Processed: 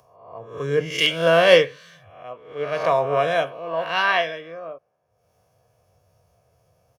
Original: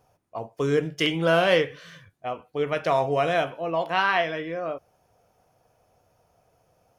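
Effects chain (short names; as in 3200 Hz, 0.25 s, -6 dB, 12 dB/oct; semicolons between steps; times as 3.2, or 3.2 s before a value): spectral swells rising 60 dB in 0.66 s; HPF 110 Hz 12 dB/oct; comb 1.8 ms, depth 42%; upward compressor, threshold -25 dBFS; three-band expander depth 100%; gain -1.5 dB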